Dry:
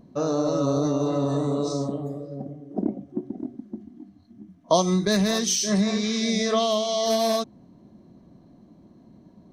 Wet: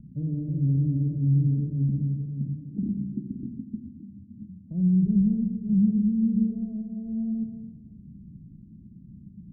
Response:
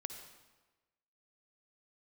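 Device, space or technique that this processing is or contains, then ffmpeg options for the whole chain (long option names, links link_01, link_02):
club heard from the street: -filter_complex "[0:a]lowpass=1900,lowshelf=frequency=390:gain=4.5,alimiter=limit=-16dB:level=0:latency=1:release=23,lowpass=frequency=190:width=0.5412,lowpass=frequency=190:width=1.3066[link_01];[1:a]atrim=start_sample=2205[link_02];[link_01][link_02]afir=irnorm=-1:irlink=0,volume=8dB"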